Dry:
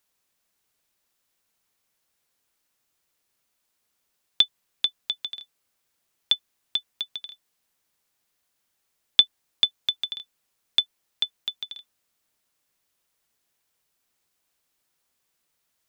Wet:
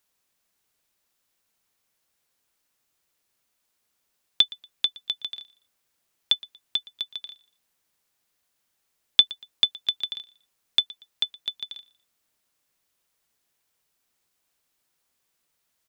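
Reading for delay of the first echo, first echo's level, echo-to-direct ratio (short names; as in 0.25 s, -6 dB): 0.118 s, -21.5 dB, -21.0 dB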